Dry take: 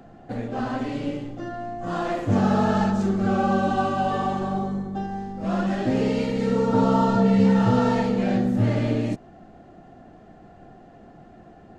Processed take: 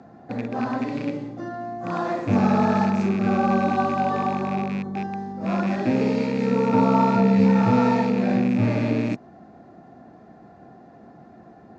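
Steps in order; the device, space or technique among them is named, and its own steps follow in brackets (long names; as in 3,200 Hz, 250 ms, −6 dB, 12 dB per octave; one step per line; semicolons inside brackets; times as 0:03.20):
car door speaker with a rattle (loose part that buzzes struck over −28 dBFS, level −23 dBFS; loudspeaker in its box 98–6,600 Hz, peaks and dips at 240 Hz +3 dB, 970 Hz +4 dB, 3,000 Hz −10 dB)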